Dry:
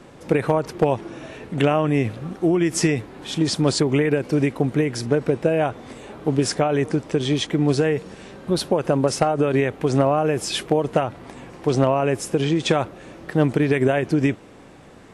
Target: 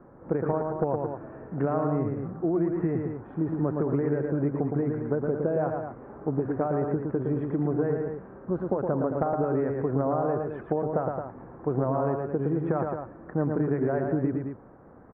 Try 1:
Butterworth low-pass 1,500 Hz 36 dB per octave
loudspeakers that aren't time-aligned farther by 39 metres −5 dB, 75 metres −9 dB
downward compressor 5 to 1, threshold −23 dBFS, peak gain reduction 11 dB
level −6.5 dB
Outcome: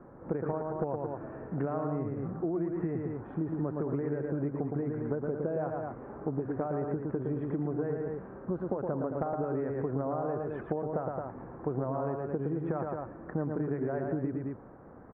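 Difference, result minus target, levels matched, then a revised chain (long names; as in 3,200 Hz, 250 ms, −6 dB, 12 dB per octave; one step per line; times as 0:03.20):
downward compressor: peak gain reduction +7 dB
Butterworth low-pass 1,500 Hz 36 dB per octave
loudspeakers that aren't time-aligned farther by 39 metres −5 dB, 75 metres −9 dB
downward compressor 5 to 1, threshold −14.5 dBFS, peak gain reduction 4 dB
level −6.5 dB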